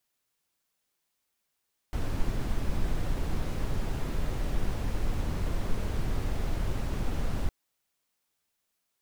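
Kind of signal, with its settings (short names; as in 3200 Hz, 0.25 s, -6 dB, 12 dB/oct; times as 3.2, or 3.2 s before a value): noise brown, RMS -27.5 dBFS 5.56 s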